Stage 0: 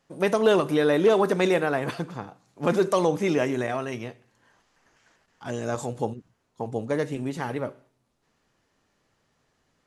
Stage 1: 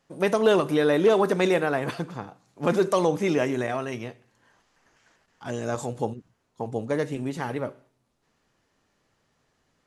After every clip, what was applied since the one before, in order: nothing audible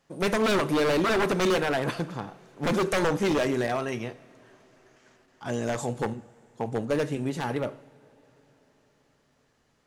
wavefolder -19.5 dBFS; two-slope reverb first 0.45 s, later 4.8 s, from -18 dB, DRR 14.5 dB; gain +1 dB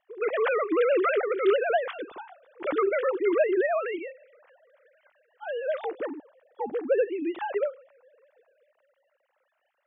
sine-wave speech

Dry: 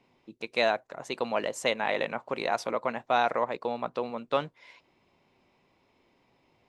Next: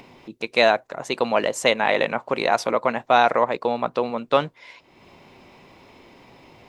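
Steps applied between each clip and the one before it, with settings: upward compressor, threshold -47 dBFS; gain +8.5 dB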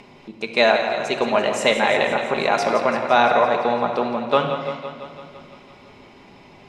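LPF 9900 Hz 12 dB/oct; thinning echo 0.169 s, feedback 68%, high-pass 210 Hz, level -10 dB; shoebox room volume 2300 m³, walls mixed, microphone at 1.3 m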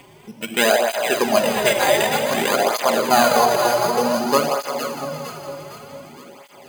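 careless resampling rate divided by 8×, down none, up hold; echo with dull and thin repeats by turns 0.23 s, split 1000 Hz, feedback 70%, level -4 dB; tape flanging out of phase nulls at 0.54 Hz, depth 4.7 ms; gain +3 dB

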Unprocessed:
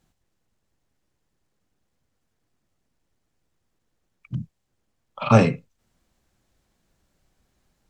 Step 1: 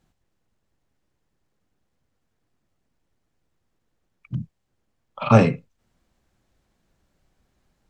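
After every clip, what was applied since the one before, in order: high shelf 4400 Hz -6 dB; gain +1 dB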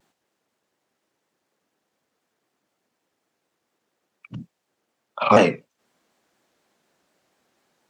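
HPF 320 Hz 12 dB/oct; in parallel at +1 dB: limiter -11 dBFS, peak gain reduction 7.5 dB; on the sum: shaped vibrato saw down 4.1 Hz, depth 160 cents; gain -1 dB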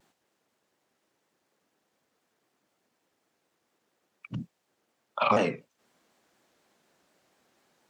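compressor 4:1, threshold -22 dBFS, peak gain reduction 11.5 dB

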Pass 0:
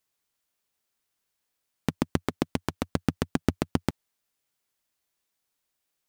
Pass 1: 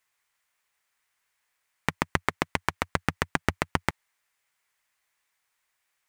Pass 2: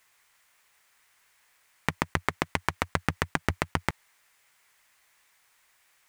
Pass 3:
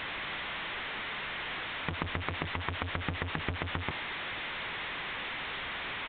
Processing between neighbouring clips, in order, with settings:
ten-band EQ 250 Hz -7 dB, 1000 Hz +7 dB, 2000 Hz +12 dB, 8000 Hz +4 dB; gain -1 dB
negative-ratio compressor -27 dBFS; limiter -13 dBFS, peak gain reduction 9 dB; gain +8.5 dB
delta modulation 32 kbps, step -24 dBFS; downsampling 8000 Hz; gain -5.5 dB

